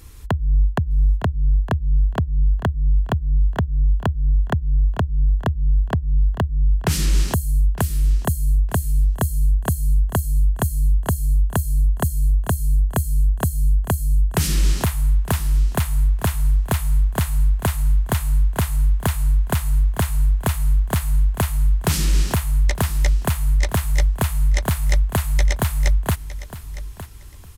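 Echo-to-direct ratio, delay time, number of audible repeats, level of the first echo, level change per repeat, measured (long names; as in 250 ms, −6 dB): −14.5 dB, 910 ms, 2, −14.5 dB, −14.5 dB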